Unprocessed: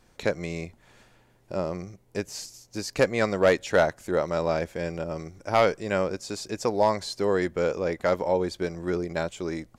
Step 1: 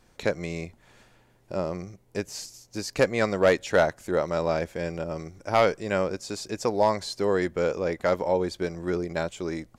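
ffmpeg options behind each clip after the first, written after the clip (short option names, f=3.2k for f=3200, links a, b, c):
-af anull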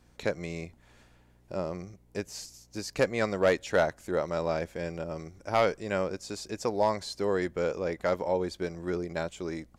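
-af "aeval=exprs='val(0)+0.00126*(sin(2*PI*60*n/s)+sin(2*PI*2*60*n/s)/2+sin(2*PI*3*60*n/s)/3+sin(2*PI*4*60*n/s)/4+sin(2*PI*5*60*n/s)/5)':c=same,volume=-4dB"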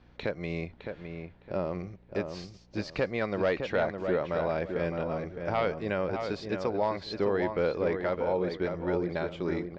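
-filter_complex "[0:a]lowpass=f=4k:w=0.5412,lowpass=f=4k:w=1.3066,alimiter=limit=-22dB:level=0:latency=1:release=245,asplit=2[a][b];[b]adelay=611,lowpass=f=2.3k:p=1,volume=-6dB,asplit=2[c][d];[d]adelay=611,lowpass=f=2.3k:p=1,volume=0.27,asplit=2[e][f];[f]adelay=611,lowpass=f=2.3k:p=1,volume=0.27[g];[a][c][e][g]amix=inputs=4:normalize=0,volume=3.5dB"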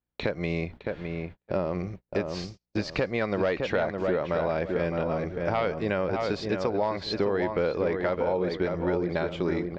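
-af "agate=range=-38dB:threshold=-46dB:ratio=16:detection=peak,acompressor=threshold=-31dB:ratio=3,volume=7dB"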